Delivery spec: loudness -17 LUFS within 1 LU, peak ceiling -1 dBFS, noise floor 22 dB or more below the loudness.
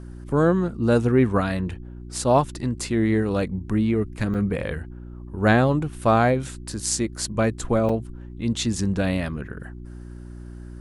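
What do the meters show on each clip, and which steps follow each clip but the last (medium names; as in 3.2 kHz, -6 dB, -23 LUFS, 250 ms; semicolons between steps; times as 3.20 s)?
dropouts 2; longest dropout 4.3 ms; hum 60 Hz; highest harmonic 360 Hz; hum level -37 dBFS; loudness -23.0 LUFS; peak level -6.0 dBFS; loudness target -17.0 LUFS
-> interpolate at 4.34/7.89 s, 4.3 ms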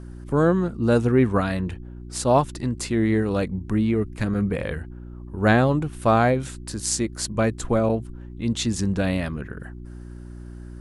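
dropouts 0; hum 60 Hz; highest harmonic 360 Hz; hum level -37 dBFS
-> de-hum 60 Hz, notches 6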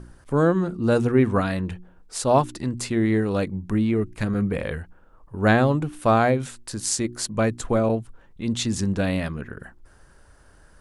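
hum not found; loudness -23.5 LUFS; peak level -5.5 dBFS; loudness target -17.0 LUFS
-> trim +6.5 dB; peak limiter -1 dBFS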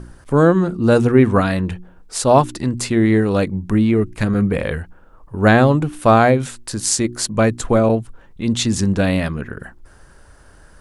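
loudness -17.0 LUFS; peak level -1.0 dBFS; noise floor -47 dBFS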